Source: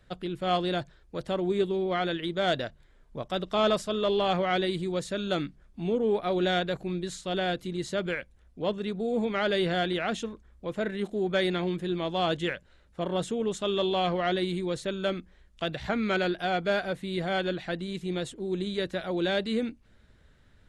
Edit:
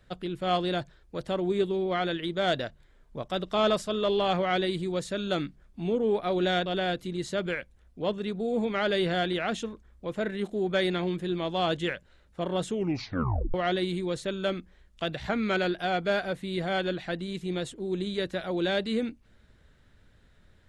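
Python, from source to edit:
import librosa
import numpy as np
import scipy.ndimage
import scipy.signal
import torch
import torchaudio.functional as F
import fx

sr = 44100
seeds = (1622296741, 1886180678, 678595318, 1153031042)

y = fx.edit(x, sr, fx.cut(start_s=6.66, length_s=0.6),
    fx.tape_stop(start_s=13.3, length_s=0.84), tone=tone)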